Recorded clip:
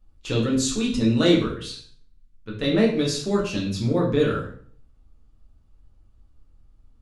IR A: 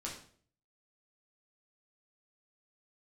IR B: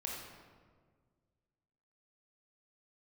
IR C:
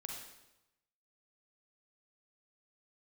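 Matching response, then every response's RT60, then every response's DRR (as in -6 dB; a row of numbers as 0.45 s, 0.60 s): A; 0.50 s, 1.7 s, 0.95 s; -4.0 dB, -3.0 dB, 0.0 dB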